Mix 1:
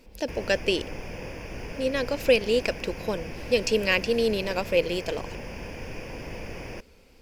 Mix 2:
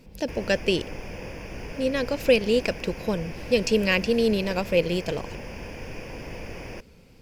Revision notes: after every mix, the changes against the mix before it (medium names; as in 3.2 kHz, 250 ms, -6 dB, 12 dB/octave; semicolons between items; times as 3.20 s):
speech: add peaking EQ 140 Hz +15 dB 0.98 oct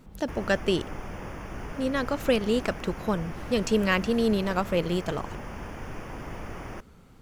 master: add graphic EQ with 31 bands 500 Hz -7 dB, 800 Hz +3 dB, 1.25 kHz +12 dB, 2.5 kHz -10 dB, 5 kHz -11 dB, 12.5 kHz -3 dB